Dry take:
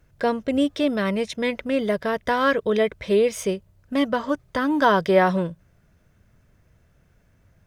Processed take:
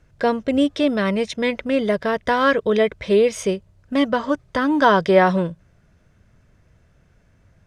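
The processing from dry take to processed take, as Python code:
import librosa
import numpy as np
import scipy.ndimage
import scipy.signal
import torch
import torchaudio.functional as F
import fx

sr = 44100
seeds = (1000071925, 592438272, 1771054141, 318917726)

y = scipy.signal.sosfilt(scipy.signal.butter(2, 8700.0, 'lowpass', fs=sr, output='sos'), x)
y = y * 10.0 ** (3.0 / 20.0)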